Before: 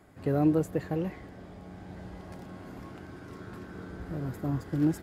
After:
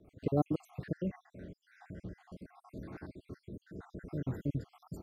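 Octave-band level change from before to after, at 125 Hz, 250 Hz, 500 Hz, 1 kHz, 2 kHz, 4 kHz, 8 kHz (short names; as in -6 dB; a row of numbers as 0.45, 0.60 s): -5.5 dB, -8.5 dB, -7.0 dB, -5.5 dB, -9.5 dB, -9.5 dB, under -10 dB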